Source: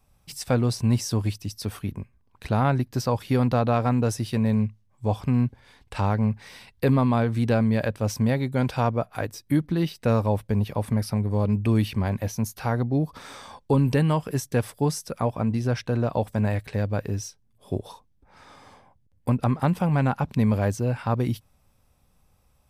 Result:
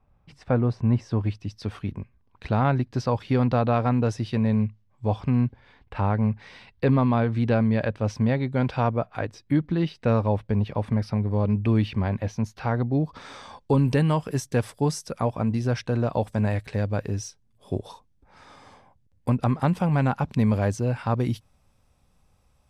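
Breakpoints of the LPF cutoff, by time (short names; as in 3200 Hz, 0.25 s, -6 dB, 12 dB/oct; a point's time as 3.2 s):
0.9 s 1700 Hz
1.83 s 4300 Hz
5.43 s 4300 Hz
5.97 s 2200 Hz
6.29 s 3800 Hz
12.68 s 3800 Hz
14.01 s 9300 Hz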